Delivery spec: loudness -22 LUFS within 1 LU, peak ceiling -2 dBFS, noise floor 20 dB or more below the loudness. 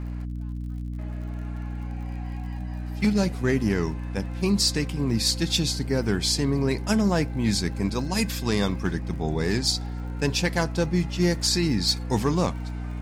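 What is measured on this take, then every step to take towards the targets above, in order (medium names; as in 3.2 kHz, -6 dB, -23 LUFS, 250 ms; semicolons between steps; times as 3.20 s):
tick rate 50 per s; hum 60 Hz; highest harmonic 300 Hz; hum level -29 dBFS; loudness -25.5 LUFS; peak level -10.5 dBFS; loudness target -22.0 LUFS
-> de-click; hum notches 60/120/180/240/300 Hz; trim +3.5 dB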